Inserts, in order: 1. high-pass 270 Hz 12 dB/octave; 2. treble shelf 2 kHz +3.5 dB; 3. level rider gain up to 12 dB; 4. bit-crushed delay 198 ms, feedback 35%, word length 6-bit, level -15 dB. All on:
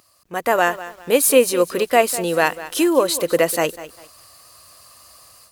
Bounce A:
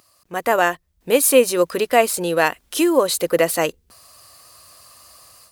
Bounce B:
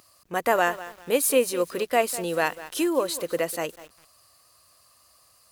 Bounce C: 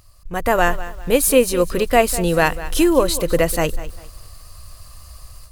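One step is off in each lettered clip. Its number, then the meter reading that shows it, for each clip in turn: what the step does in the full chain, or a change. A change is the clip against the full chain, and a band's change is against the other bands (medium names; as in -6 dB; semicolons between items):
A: 4, momentary loudness spread change -1 LU; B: 3, momentary loudness spread change -2 LU; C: 1, 125 Hz band +9.5 dB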